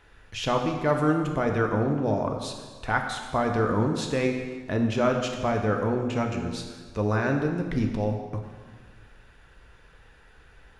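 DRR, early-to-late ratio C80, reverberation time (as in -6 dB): 2.5 dB, 6.5 dB, 1.5 s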